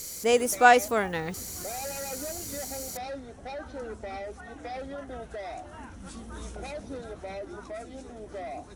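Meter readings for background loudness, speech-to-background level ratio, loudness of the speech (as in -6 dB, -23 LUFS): -40.0 LUFS, 14.0 dB, -26.0 LUFS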